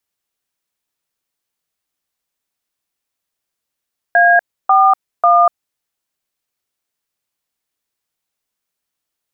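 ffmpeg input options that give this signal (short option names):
-f lavfi -i "aevalsrc='0.335*clip(min(mod(t,0.543),0.243-mod(t,0.543))/0.002,0,1)*(eq(floor(t/0.543),0)*(sin(2*PI*697*mod(t,0.543))+sin(2*PI*1633*mod(t,0.543)))+eq(floor(t/0.543),1)*(sin(2*PI*770*mod(t,0.543))+sin(2*PI*1209*mod(t,0.543)))+eq(floor(t/0.543),2)*(sin(2*PI*697*mod(t,0.543))+sin(2*PI*1209*mod(t,0.543))))':d=1.629:s=44100"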